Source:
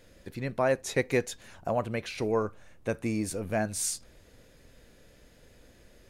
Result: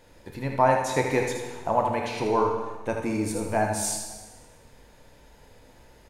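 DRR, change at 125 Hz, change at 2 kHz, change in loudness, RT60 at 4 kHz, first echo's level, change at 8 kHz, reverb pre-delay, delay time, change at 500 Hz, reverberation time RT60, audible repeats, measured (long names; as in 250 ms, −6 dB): 0.5 dB, +3.0 dB, +3.5 dB, +5.0 dB, 1.2 s, −6.5 dB, +2.5 dB, 6 ms, 77 ms, +4.0 dB, 1.3 s, 1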